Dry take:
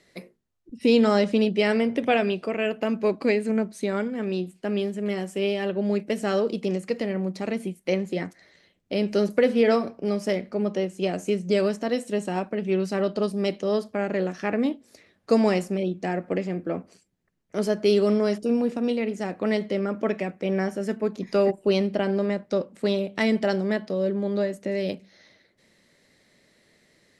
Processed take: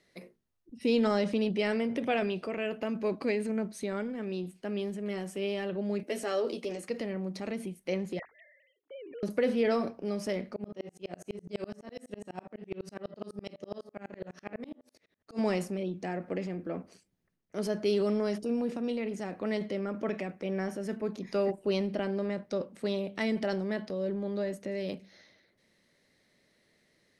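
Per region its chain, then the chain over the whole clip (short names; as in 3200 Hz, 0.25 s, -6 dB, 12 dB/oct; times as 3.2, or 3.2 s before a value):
6.03–6.89 HPF 260 Hz 24 dB/oct + high shelf 6200 Hz +3.5 dB + doubler 12 ms -5.5 dB
8.19–9.23 sine-wave speech + notches 50/100/150/200/250/300/350/400 Hz + compressor 2.5:1, threshold -41 dBFS
10.56–15.39 doubler 34 ms -10 dB + de-hum 84.34 Hz, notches 24 + dB-ramp tremolo swelling 12 Hz, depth 38 dB
whole clip: notch 7400 Hz, Q 10; transient shaper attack 0 dB, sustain +6 dB; gain -8 dB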